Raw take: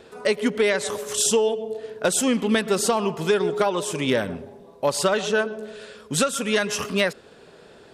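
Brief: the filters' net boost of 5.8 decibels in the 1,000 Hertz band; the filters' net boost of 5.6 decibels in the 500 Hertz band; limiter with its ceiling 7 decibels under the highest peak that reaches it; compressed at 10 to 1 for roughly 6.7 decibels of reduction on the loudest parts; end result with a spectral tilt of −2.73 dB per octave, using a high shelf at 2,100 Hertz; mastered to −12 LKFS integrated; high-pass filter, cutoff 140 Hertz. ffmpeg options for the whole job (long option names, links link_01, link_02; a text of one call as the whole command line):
ffmpeg -i in.wav -af "highpass=140,equalizer=frequency=500:width_type=o:gain=5.5,equalizer=frequency=1000:width_type=o:gain=5,highshelf=frequency=2100:gain=3.5,acompressor=threshold=-17dB:ratio=10,volume=12.5dB,alimiter=limit=-1dB:level=0:latency=1" out.wav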